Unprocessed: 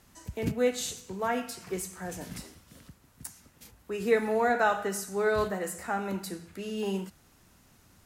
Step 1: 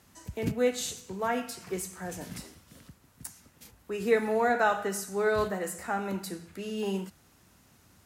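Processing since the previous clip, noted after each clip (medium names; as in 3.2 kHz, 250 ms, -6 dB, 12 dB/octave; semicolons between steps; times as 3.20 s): high-pass 51 Hz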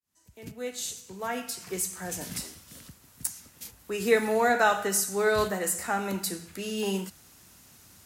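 fade-in on the opening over 2.41 s; treble shelf 3 kHz +10 dB; trim +1.5 dB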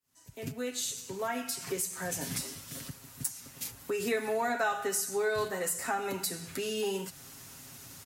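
comb 7.4 ms, depth 69%; compression 2.5:1, threshold -38 dBFS, peak gain reduction 14.5 dB; trim +4 dB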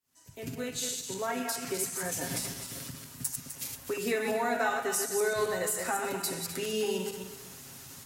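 backward echo that repeats 127 ms, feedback 50%, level -4.5 dB; hum notches 50/100/150/200 Hz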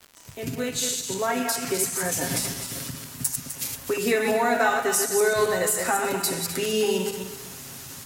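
crackle 210 per s -41 dBFS; trim +7.5 dB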